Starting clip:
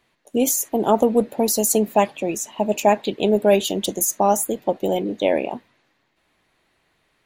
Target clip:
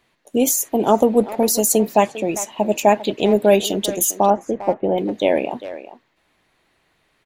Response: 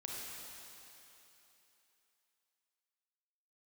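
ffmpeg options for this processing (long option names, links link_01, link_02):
-filter_complex "[0:a]asettb=1/sr,asplit=3[link_01][link_02][link_03];[link_01]atrim=end=4.304[link_04];[link_02]atrim=start=4.3:end=4.98,asetpts=PTS-STARTPTS,afade=type=in:duration=0.004:curve=qsin,afade=type=out:start_time=0.676:duration=0.004:curve=qsin,lowpass=frequency=2100:width=0.5412,lowpass=frequency=2100:width=1.3066[link_05];[link_03]atrim=start=4.976[link_06];[link_04][link_05]acrossfade=duration=0.004:curve1=hsin:curve2=qsin[link_07];[link_07][link_06]acrossfade=duration=0.004:curve1=qsin:curve2=hsin,asplit=2[link_08][link_09];[link_09]adelay=400,highpass=300,lowpass=3400,asoftclip=type=hard:threshold=-12dB,volume=-13dB[link_10];[link_08][link_10]amix=inputs=2:normalize=0,volume=2dB"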